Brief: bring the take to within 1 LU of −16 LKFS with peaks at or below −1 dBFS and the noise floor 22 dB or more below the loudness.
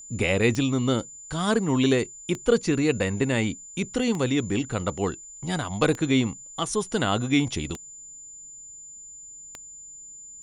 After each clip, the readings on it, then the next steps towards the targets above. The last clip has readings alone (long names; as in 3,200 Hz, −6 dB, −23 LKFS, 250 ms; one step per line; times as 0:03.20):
number of clicks 6; interfering tone 7,100 Hz; level of the tone −41 dBFS; integrated loudness −25.0 LKFS; sample peak −7.5 dBFS; target loudness −16.0 LKFS
→ click removal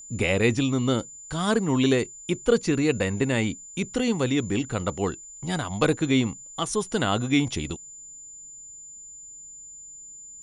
number of clicks 0; interfering tone 7,100 Hz; level of the tone −41 dBFS
→ notch filter 7,100 Hz, Q 30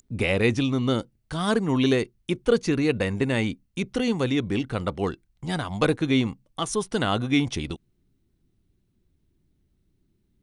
interfering tone none found; integrated loudness −25.5 LKFS; sample peak −8.0 dBFS; target loudness −16.0 LKFS
→ level +9.5 dB
brickwall limiter −1 dBFS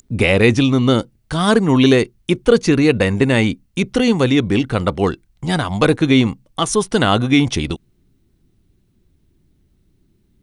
integrated loudness −16.0 LKFS; sample peak −1.0 dBFS; background noise floor −61 dBFS